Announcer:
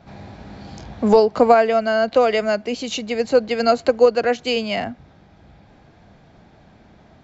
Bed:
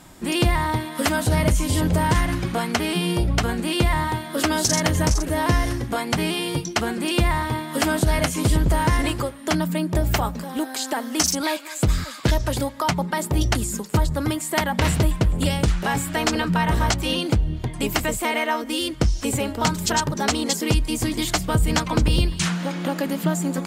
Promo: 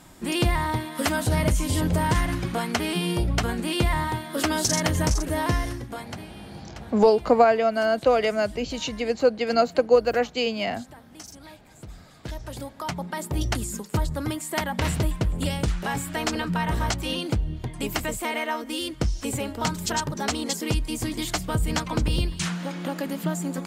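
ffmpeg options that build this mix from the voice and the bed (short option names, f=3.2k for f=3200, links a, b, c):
-filter_complex "[0:a]adelay=5900,volume=-4dB[a];[1:a]volume=14.5dB,afade=t=out:st=5.36:d=0.93:silence=0.105925,afade=t=in:st=12.02:d=1.48:silence=0.133352[b];[a][b]amix=inputs=2:normalize=0"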